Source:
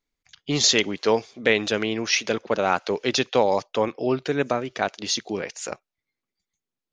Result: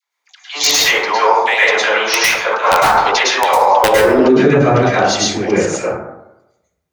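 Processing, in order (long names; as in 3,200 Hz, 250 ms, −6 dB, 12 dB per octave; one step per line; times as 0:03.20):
high-pass filter sweep 920 Hz → 63 Hz, 0:03.51–0:04.72
in parallel at −10 dB: hard clipping −12.5 dBFS, distortion −15 dB
on the sum: all-pass dispersion lows, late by 84 ms, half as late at 690 Hz
wrap-around overflow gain 5.5 dB
flanger 1.9 Hz, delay 7.3 ms, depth 8.7 ms, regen +77%
dense smooth reverb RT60 0.89 s, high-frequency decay 0.35×, pre-delay 95 ms, DRR −8.5 dB
boost into a limiter +7.5 dB
level −1 dB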